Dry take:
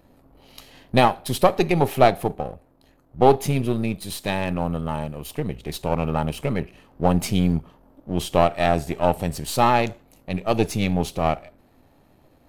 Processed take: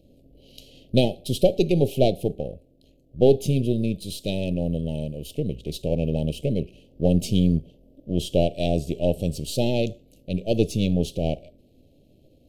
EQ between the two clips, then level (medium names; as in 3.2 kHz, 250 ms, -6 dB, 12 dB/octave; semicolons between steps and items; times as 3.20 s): elliptic band-stop 570–2900 Hz, stop band 70 dB; treble shelf 8.3 kHz -9.5 dB; dynamic bell 1.8 kHz, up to -5 dB, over -51 dBFS, Q 2.9; +1.0 dB